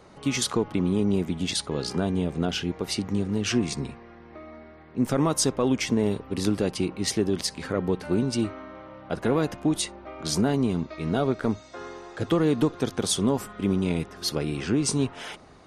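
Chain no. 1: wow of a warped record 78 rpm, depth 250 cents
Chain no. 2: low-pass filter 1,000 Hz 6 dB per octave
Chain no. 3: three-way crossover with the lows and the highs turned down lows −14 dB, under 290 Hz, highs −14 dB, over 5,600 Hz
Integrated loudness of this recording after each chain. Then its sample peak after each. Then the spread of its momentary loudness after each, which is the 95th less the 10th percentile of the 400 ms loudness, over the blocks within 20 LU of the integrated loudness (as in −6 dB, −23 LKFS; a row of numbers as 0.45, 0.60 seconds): −26.5, −27.5, −30.5 LKFS; −11.5, −12.0, −13.5 dBFS; 13, 13, 13 LU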